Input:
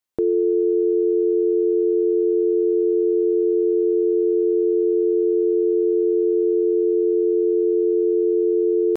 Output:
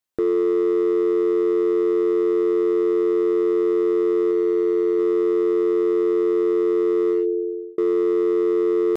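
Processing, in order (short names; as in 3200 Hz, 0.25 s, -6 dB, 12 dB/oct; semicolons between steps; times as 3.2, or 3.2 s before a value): 4.31–4.99 low shelf 130 Hz -6 dB; 7.09–7.78 fade out; hard clip -15 dBFS, distortion -20 dB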